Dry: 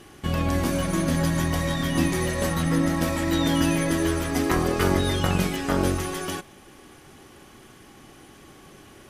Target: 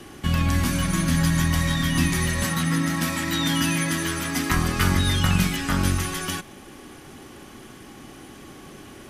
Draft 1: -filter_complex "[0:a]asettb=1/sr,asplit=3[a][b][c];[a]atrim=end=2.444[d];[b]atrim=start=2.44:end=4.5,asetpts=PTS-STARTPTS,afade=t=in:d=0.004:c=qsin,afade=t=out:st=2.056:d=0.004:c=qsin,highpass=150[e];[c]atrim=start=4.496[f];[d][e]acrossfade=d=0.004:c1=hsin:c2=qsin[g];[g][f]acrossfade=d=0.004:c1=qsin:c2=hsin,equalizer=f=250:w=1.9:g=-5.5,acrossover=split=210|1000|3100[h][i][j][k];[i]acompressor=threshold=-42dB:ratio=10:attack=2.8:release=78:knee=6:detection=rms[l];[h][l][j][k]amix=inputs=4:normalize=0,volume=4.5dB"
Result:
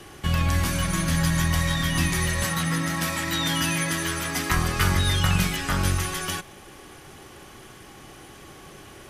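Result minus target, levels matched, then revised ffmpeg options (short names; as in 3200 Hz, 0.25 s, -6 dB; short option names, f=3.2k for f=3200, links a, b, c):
250 Hz band -3.0 dB
-filter_complex "[0:a]asettb=1/sr,asplit=3[a][b][c];[a]atrim=end=2.444[d];[b]atrim=start=2.44:end=4.5,asetpts=PTS-STARTPTS,afade=t=in:d=0.004:c=qsin,afade=t=out:st=2.056:d=0.004:c=qsin,highpass=150[e];[c]atrim=start=4.496[f];[d][e]acrossfade=d=0.004:c1=hsin:c2=qsin[g];[g][f]acrossfade=d=0.004:c1=qsin:c2=hsin,equalizer=f=250:w=1.9:g=4,acrossover=split=210|1000|3100[h][i][j][k];[i]acompressor=threshold=-42dB:ratio=10:attack=2.8:release=78:knee=6:detection=rms[l];[h][l][j][k]amix=inputs=4:normalize=0,volume=4.5dB"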